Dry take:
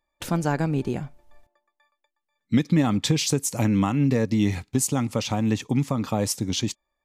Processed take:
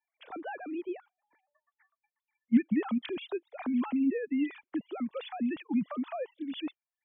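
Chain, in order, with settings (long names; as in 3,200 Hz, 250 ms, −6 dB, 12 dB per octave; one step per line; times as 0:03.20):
three sine waves on the formant tracks
reverb reduction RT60 0.52 s
level −8.5 dB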